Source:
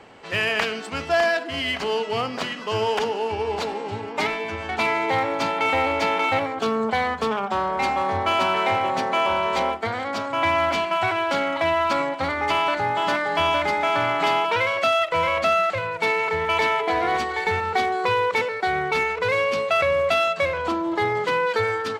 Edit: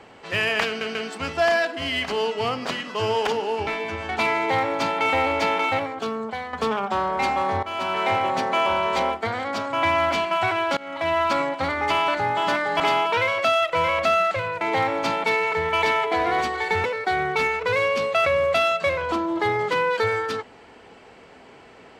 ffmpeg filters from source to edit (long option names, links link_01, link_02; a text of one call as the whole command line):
ffmpeg -i in.wav -filter_complex "[0:a]asplit=11[link_01][link_02][link_03][link_04][link_05][link_06][link_07][link_08][link_09][link_10][link_11];[link_01]atrim=end=0.812[link_12];[link_02]atrim=start=0.668:end=0.812[link_13];[link_03]atrim=start=0.668:end=3.392[link_14];[link_04]atrim=start=4.268:end=7.13,asetpts=PTS-STARTPTS,afade=type=out:start_time=1.842:duration=1.02:silence=0.266073[link_15];[link_05]atrim=start=7.13:end=8.23,asetpts=PTS-STARTPTS,afade=type=in:duration=0.004:curve=hsin:silence=0.266073,afade=type=out:start_time=1.096:duration=0.004:curve=hsin:silence=0.211349[link_16];[link_06]atrim=start=8.23:end=11.37,asetpts=PTS-STARTPTS,afade=type=in:duration=0.5:silence=0.211349,afade=type=out:start_time=3.136:duration=0.004:curve=hsin:silence=0.0749894[link_17];[link_07]atrim=start=11.37:end=13.402,asetpts=PTS-STARTPTS,afade=type=in:duration=0.4:silence=0.0749894[link_18];[link_08]atrim=start=14.188:end=16.002[link_19];[link_09]atrim=start=4.968:end=5.602[link_20];[link_10]atrim=start=15.998:end=17.602[link_21];[link_11]atrim=start=18.398[link_22];[link_12][link_13]acrossfade=duration=0.004:curve1=hsin:curve2=hsin[link_23];[link_23][link_14]acrossfade=duration=0.004:curve1=hsin:curve2=hsin[link_24];[link_15][link_16][link_17][link_18]concat=n=4:v=0:a=1[link_25];[link_24][link_25]acrossfade=duration=0.004:curve1=hsin:curve2=hsin[link_26];[link_26][link_19]acrossfade=duration=0.004:curve1=hsin:curve2=hsin[link_27];[link_27][link_20]acrossfade=duration=0.004:curve1=hsin:curve2=hsin[link_28];[link_28][link_21]acrossfade=duration=0.004:curve1=hsin:curve2=hsin[link_29];[link_29][link_22]acrossfade=duration=0.004:curve1=hsin:curve2=hsin" out.wav